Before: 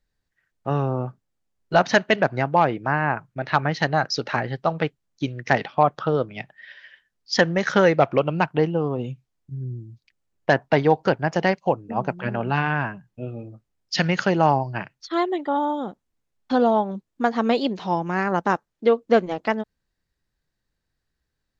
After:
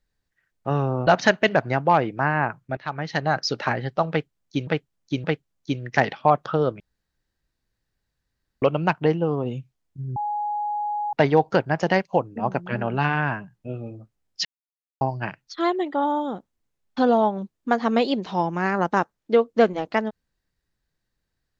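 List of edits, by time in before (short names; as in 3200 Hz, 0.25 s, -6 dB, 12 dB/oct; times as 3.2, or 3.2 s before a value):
1.07–1.74 cut
3.44–4.07 fade in, from -15.5 dB
4.77–5.34 loop, 3 plays
6.33–8.15 room tone
9.69–10.66 bleep 833 Hz -23.5 dBFS
13.98–14.54 mute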